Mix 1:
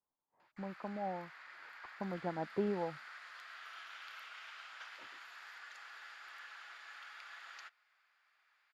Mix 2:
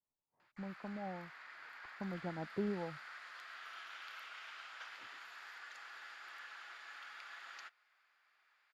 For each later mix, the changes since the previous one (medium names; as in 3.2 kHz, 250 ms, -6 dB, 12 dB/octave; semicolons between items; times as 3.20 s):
speech -7.5 dB; master: add bass shelf 250 Hz +11.5 dB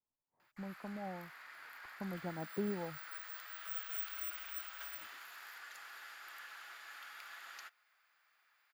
background: remove low-pass 5.5 kHz 12 dB/octave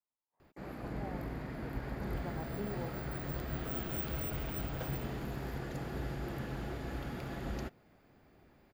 background: remove Chebyshev high-pass 1.3 kHz, order 3; master: add bass shelf 250 Hz -11.5 dB